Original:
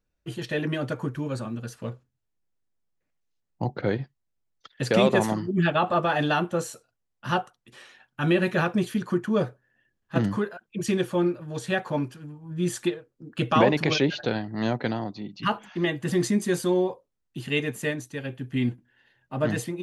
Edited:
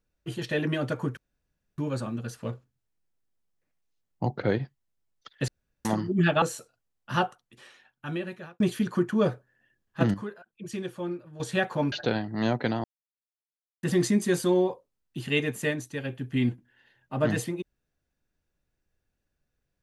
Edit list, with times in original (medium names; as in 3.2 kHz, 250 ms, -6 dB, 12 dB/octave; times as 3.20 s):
1.17 s: insert room tone 0.61 s
4.87–5.24 s: room tone
5.81–6.57 s: delete
7.31–8.75 s: fade out
10.29–11.55 s: gain -9.5 dB
12.07–14.12 s: delete
15.04–16.03 s: mute